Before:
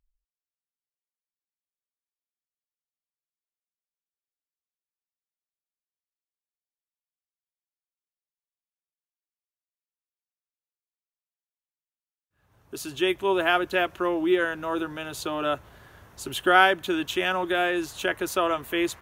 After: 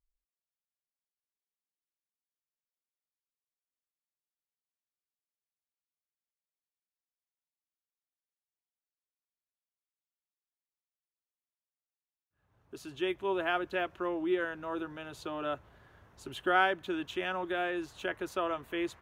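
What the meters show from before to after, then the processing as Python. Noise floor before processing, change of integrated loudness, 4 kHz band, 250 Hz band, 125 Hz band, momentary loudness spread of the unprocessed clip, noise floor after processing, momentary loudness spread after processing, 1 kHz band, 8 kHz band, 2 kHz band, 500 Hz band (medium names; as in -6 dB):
under -85 dBFS, -8.5 dB, -11.5 dB, -8.0 dB, -8.0 dB, 13 LU, under -85 dBFS, 13 LU, -8.5 dB, under -15 dB, -9.5 dB, -8.0 dB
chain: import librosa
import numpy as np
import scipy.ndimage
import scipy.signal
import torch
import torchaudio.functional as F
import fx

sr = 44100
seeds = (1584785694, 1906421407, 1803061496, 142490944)

y = fx.lowpass(x, sr, hz=2900.0, slope=6)
y = F.gain(torch.from_numpy(y), -8.0).numpy()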